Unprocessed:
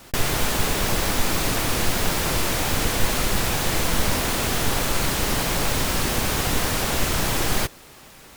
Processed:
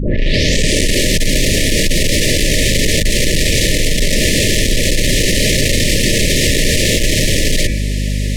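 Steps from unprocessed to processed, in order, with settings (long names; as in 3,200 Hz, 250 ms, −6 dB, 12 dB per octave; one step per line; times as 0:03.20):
turntable start at the beginning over 1.40 s
low-pass filter 9,000 Hz 12 dB per octave
hum removal 87.32 Hz, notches 32
soft clipping −22 dBFS, distortion −10 dB
frequency shifter −28 Hz
mains hum 50 Hz, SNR 12 dB
linear-phase brick-wall band-stop 640–1,700 Hz
boost into a limiter +18.5 dB
envelope flattener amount 50%
level −4 dB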